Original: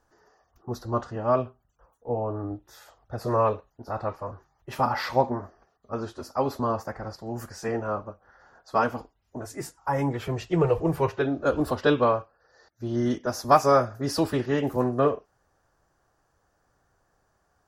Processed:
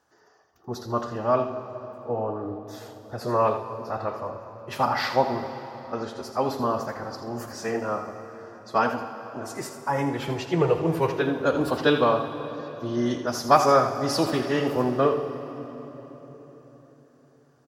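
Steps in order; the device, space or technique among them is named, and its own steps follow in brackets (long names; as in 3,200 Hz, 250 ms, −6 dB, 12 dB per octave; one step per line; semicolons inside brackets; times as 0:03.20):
PA in a hall (high-pass filter 120 Hz; parametric band 3,400 Hz +5 dB 1.8 octaves; single-tap delay 81 ms −10 dB; convolution reverb RT60 4.1 s, pre-delay 30 ms, DRR 9 dB)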